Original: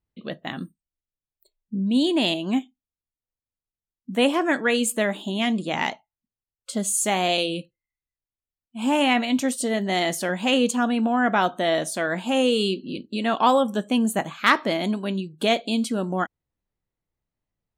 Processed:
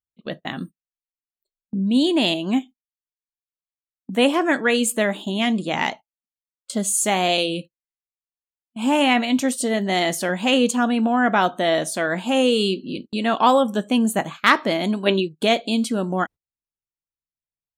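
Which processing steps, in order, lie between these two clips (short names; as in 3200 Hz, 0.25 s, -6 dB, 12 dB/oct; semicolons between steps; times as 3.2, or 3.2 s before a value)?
gate -37 dBFS, range -22 dB; spectral gain 15.06–15.28, 280–4300 Hz +11 dB; gain +2.5 dB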